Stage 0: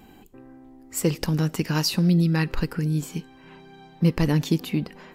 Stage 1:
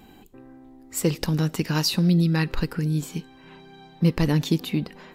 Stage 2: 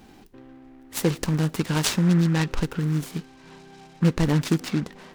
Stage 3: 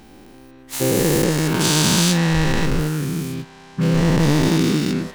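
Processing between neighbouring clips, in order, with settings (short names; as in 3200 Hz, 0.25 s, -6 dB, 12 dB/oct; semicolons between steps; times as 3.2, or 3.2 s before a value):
bell 3800 Hz +5 dB 0.26 oct
noise-modulated delay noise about 1300 Hz, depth 0.06 ms
spectral dilation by 0.48 s; gain -1.5 dB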